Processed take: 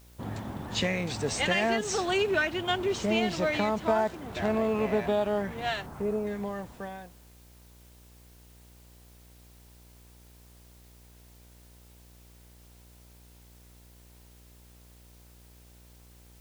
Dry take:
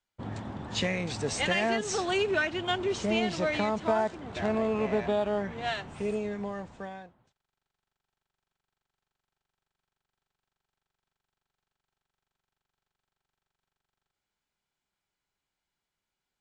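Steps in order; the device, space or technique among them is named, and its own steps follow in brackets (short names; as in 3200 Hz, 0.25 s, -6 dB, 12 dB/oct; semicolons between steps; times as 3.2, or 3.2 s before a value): 5.86–6.27 resonant high shelf 2000 Hz -12.5 dB, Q 1.5; video cassette with head-switching buzz (buzz 60 Hz, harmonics 17, -56 dBFS -7 dB/oct; white noise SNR 28 dB); gain +1 dB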